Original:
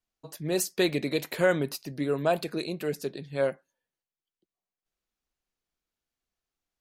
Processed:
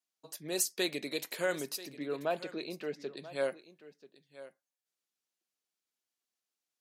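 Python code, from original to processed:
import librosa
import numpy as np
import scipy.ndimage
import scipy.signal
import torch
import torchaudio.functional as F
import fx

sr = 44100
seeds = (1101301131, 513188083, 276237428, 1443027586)

y = scipy.signal.sosfilt(scipy.signal.butter(2, 230.0, 'highpass', fs=sr, output='sos'), x)
y = fx.peak_eq(y, sr, hz=8300.0, db=8.5, octaves=2.9)
y = fx.rider(y, sr, range_db=4, speed_s=2.0)
y = fx.air_absorb(y, sr, metres=220.0, at=(1.91, 3.17))
y = y + 10.0 ** (-16.5 / 20.0) * np.pad(y, (int(986 * sr / 1000.0), 0))[:len(y)]
y = y * librosa.db_to_amplitude(-9.0)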